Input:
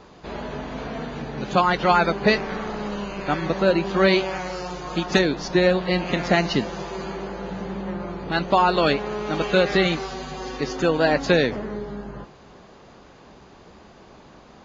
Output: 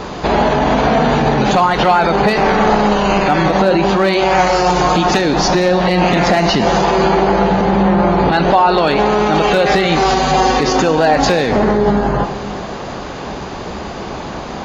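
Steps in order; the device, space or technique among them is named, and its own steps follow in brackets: loud club master (compression 2.5:1, threshold -23 dBFS, peak gain reduction 7.5 dB; hard clipper -15.5 dBFS, distortion -23 dB; loudness maximiser +27 dB); 6.84–8.88 s: low-pass 5.9 kHz 12 dB/octave; dynamic bell 790 Hz, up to +7 dB, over -27 dBFS, Q 2.6; Schroeder reverb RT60 1.6 s, combs from 30 ms, DRR 10.5 dB; trim -5.5 dB

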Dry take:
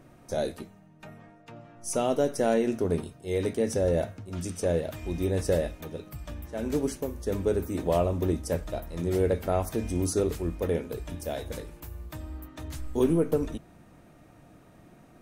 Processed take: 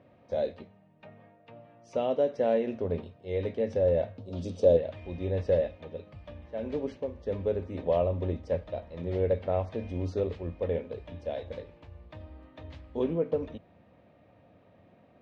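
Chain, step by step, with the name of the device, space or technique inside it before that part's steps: guitar cabinet (cabinet simulation 85–3700 Hz, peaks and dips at 93 Hz +6 dB, 140 Hz -6 dB, 330 Hz -6 dB, 540 Hz +8 dB, 1.4 kHz -7 dB); 4.18–4.77 s: ten-band graphic EQ 250 Hz +6 dB, 500 Hz +6 dB, 2 kHz -11 dB, 4 kHz +8 dB, 8 kHz +11 dB; trim -4.5 dB

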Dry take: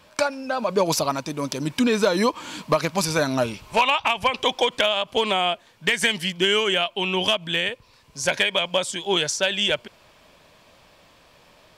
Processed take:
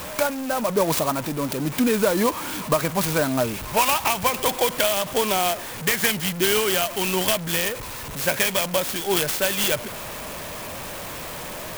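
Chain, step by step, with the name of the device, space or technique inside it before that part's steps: early CD player with a faulty converter (jump at every zero crossing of -26.5 dBFS; sampling jitter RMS 0.059 ms); trim -1.5 dB

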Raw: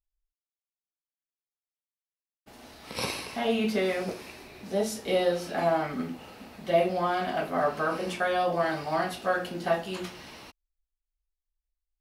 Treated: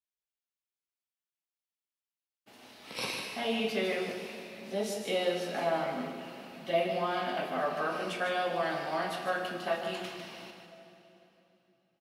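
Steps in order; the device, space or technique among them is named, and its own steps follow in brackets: PA in a hall (high-pass 150 Hz 12 dB/octave; peaking EQ 2.9 kHz +5.5 dB 1.1 oct; delay 151 ms -8 dB; reverberation RT60 3.3 s, pre-delay 30 ms, DRR 8 dB); trim -6 dB

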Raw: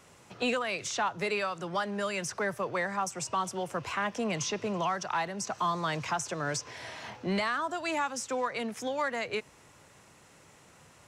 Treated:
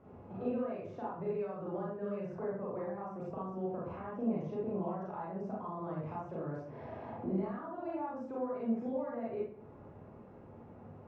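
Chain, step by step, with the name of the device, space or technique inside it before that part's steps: bass shelf 140 Hz -4 dB; television next door (compression 4:1, threshold -43 dBFS, peak gain reduction 14.5 dB; low-pass 570 Hz 12 dB/octave; reverberation RT60 0.55 s, pre-delay 31 ms, DRR -6.5 dB); trim +2.5 dB

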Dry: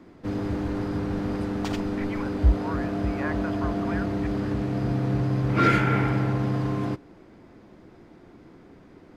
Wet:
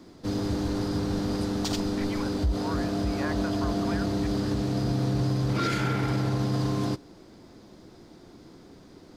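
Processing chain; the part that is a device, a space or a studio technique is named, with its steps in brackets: over-bright horn tweeter (resonant high shelf 3.2 kHz +9.5 dB, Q 1.5; peak limiter -18 dBFS, peak gain reduction 9 dB)

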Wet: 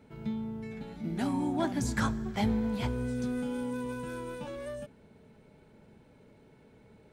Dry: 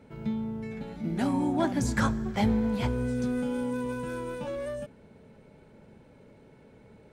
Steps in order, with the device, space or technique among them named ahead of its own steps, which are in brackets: presence and air boost (peaking EQ 3.7 kHz +2 dB; treble shelf 9.4 kHz +4 dB); band-stop 540 Hz, Q 12; trim -3.5 dB

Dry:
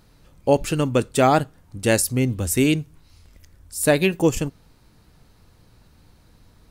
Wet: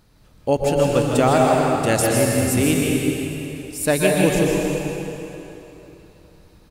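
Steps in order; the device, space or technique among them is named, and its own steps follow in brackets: cave (delay 157 ms -8 dB; reverberation RT60 3.3 s, pre-delay 114 ms, DRR -1.5 dB); trim -2 dB

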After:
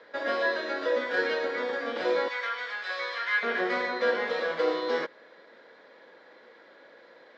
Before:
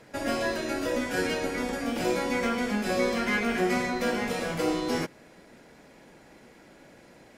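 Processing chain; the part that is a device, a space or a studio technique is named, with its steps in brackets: 2.28–3.43 s: high-pass 1.2 kHz 12 dB/octave; phone earpiece (cabinet simulation 480–4100 Hz, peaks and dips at 500 Hz +8 dB, 750 Hz -4 dB, 1.1 kHz +4 dB, 1.7 kHz +6 dB, 2.6 kHz -8 dB, 3.8 kHz +6 dB)

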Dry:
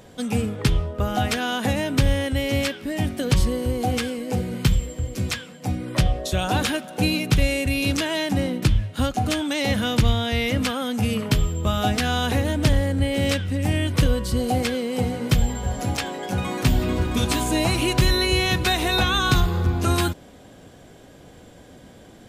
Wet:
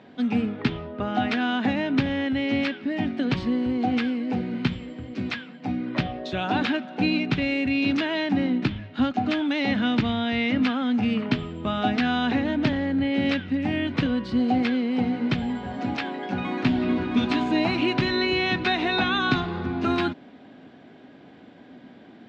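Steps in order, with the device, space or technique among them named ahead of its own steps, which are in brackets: kitchen radio (cabinet simulation 200–3700 Hz, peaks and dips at 250 Hz +7 dB, 510 Hz -8 dB, 1.1 kHz -3 dB, 3.2 kHz -4 dB)

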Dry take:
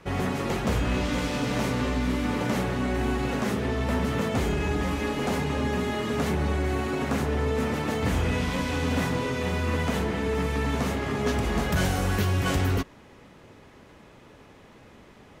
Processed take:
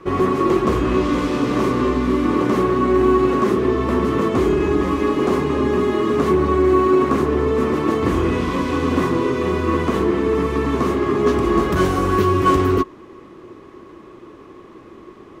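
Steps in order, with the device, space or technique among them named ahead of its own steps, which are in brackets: inside a helmet (treble shelf 5.7 kHz -5 dB; small resonant body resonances 350/1100 Hz, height 18 dB, ringing for 45 ms); trim +2 dB

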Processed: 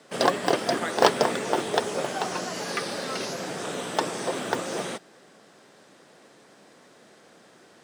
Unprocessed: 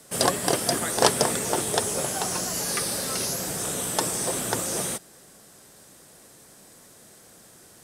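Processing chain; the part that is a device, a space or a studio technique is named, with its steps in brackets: early digital voice recorder (band-pass 210–3500 Hz; block-companded coder 7-bit); treble shelf 9.5 kHz +3.5 dB; trim +2 dB

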